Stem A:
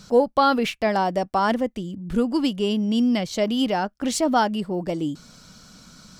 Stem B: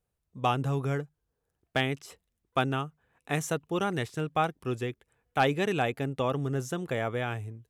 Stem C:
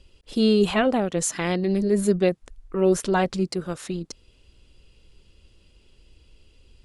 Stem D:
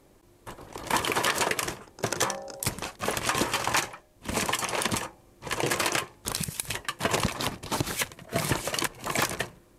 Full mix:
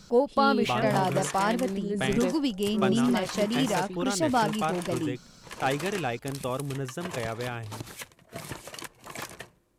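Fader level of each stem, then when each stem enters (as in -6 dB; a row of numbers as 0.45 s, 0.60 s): -5.0 dB, -2.5 dB, -10.0 dB, -11.5 dB; 0.00 s, 0.25 s, 0.00 s, 0.00 s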